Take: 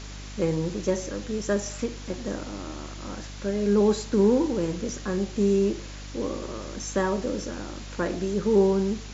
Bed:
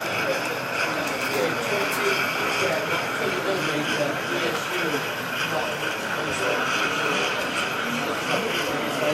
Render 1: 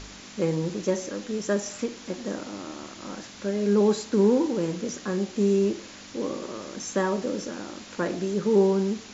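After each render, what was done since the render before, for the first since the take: de-hum 50 Hz, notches 3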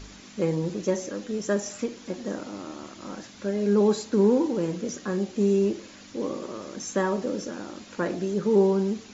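denoiser 6 dB, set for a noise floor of -45 dBFS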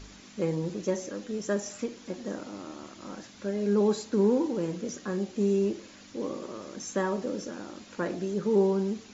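gain -3.5 dB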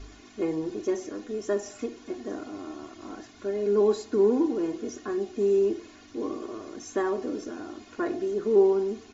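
high shelf 2400 Hz -7.5 dB; comb 2.8 ms, depth 91%

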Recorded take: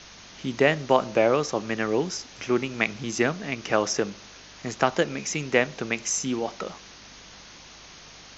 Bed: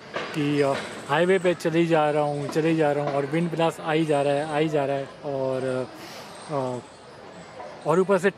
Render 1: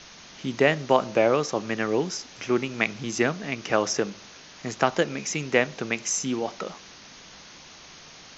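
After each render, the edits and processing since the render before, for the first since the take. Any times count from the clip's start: de-hum 50 Hz, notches 2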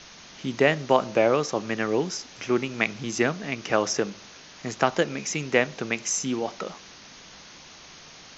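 nothing audible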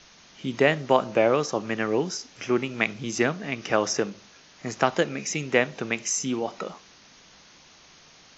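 noise print and reduce 6 dB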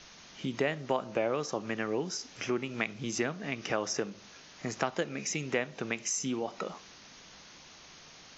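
compressor 2:1, threshold -34 dBFS, peak gain reduction 11.5 dB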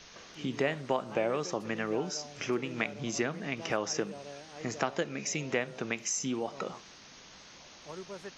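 add bed -23.5 dB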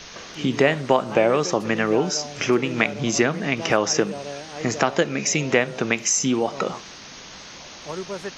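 gain +12 dB; limiter -2 dBFS, peak gain reduction 2 dB

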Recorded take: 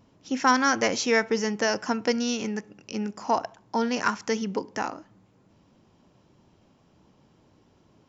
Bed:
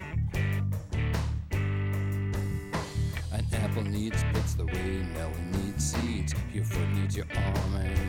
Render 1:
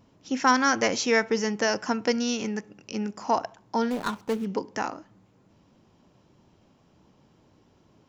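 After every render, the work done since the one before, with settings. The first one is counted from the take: 3.9–4.46 median filter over 25 samples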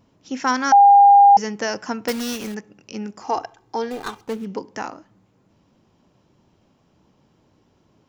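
0.72–1.37 bleep 805 Hz -6.5 dBFS; 2.08–2.55 block floating point 3-bit; 3.21–4.27 comb 2.5 ms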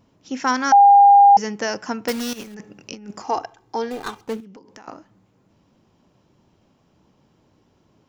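2.33–3.22 negative-ratio compressor -34 dBFS, ratio -0.5; 4.4–4.88 compressor 12:1, threshold -40 dBFS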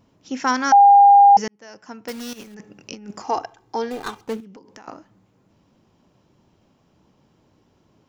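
1.48–3 fade in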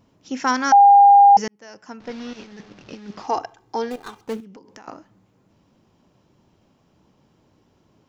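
2–3.27 delta modulation 32 kbps, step -42 dBFS; 3.96–4.36 fade in, from -13 dB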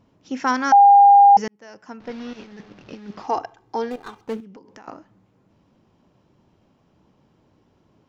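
high shelf 5200 Hz -9.5 dB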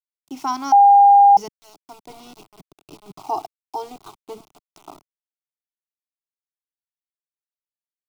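sample gate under -38 dBFS; fixed phaser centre 340 Hz, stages 8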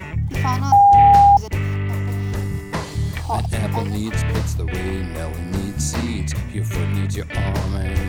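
add bed +7 dB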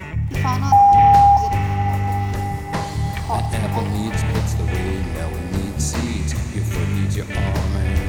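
diffused feedback echo 0.526 s, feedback 65%, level -16 dB; digital reverb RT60 4.9 s, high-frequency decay 0.9×, pre-delay 20 ms, DRR 9.5 dB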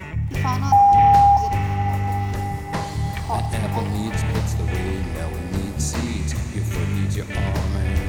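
gain -2 dB

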